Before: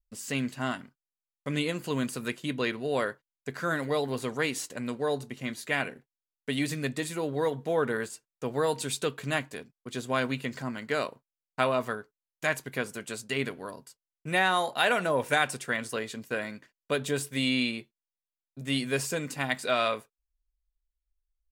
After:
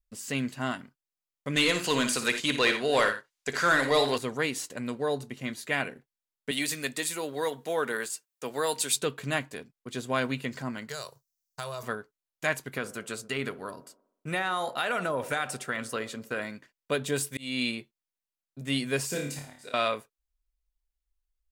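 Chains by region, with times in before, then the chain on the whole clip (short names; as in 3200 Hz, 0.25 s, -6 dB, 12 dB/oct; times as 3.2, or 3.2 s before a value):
1.56–4.18 bell 6600 Hz +8.5 dB 2.1 oct + overdrive pedal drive 14 dB, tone 5000 Hz, clips at -12 dBFS + tapped delay 57/85 ms -10/-13.5 dB
6.51–8.96 HPF 150 Hz + tilt +2.5 dB/oct
10.89–11.83 EQ curve 150 Hz 0 dB, 250 Hz -29 dB, 370 Hz -8 dB, 1600 Hz -5 dB, 2400 Hz -11 dB, 5900 Hz +15 dB, 9200 Hz +7 dB, 14000 Hz +13 dB + compressor 3:1, threshold -33 dBFS
12.67–16.42 bell 1300 Hz +7.5 dB 0.23 oct + compressor 3:1, threshold -26 dBFS + band-limited delay 63 ms, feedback 56%, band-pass 470 Hz, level -14 dB
17.12–17.75 high shelf 4500 Hz +5.5 dB + auto swell 0.322 s
19.08–19.74 auto swell 0.607 s + dynamic EQ 1000 Hz, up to -8 dB, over -48 dBFS, Q 0.82 + flutter echo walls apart 4.8 m, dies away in 0.46 s
whole clip: dry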